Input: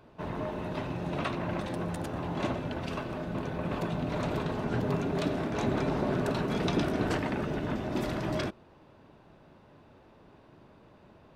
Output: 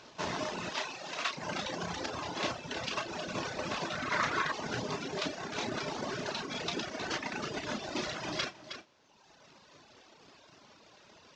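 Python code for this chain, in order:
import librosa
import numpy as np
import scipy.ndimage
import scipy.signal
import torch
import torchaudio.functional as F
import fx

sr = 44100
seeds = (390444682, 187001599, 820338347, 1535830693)

y = fx.cvsd(x, sr, bps=32000)
y = fx.tilt_eq(y, sr, slope=3.5)
y = fx.doubler(y, sr, ms=33.0, db=-7.0)
y = y + 10.0 ** (-9.0 / 20.0) * np.pad(y, (int(315 * sr / 1000.0), 0))[:len(y)]
y = fx.dereverb_blind(y, sr, rt60_s=1.4)
y = fx.highpass(y, sr, hz=730.0, slope=6, at=(0.7, 1.36))
y = fx.rider(y, sr, range_db=10, speed_s=0.5)
y = fx.band_shelf(y, sr, hz=1500.0, db=11.0, octaves=1.2, at=(3.91, 4.52))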